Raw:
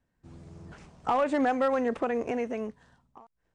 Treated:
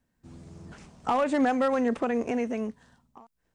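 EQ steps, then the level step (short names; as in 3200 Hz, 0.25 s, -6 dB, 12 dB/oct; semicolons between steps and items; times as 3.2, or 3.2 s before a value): bell 230 Hz +5.5 dB 0.49 oct; high shelf 4200 Hz +7 dB; 0.0 dB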